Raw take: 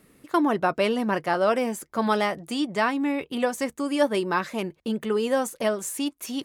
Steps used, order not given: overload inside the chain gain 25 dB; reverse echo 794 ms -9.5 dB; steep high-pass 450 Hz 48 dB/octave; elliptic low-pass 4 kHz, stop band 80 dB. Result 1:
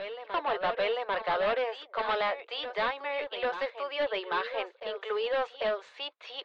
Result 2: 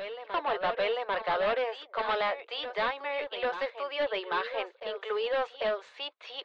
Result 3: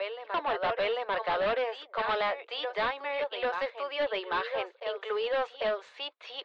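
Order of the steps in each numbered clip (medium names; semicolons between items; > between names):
steep high-pass > overload inside the chain > reverse echo > elliptic low-pass; steep high-pass > overload inside the chain > elliptic low-pass > reverse echo; reverse echo > steep high-pass > overload inside the chain > elliptic low-pass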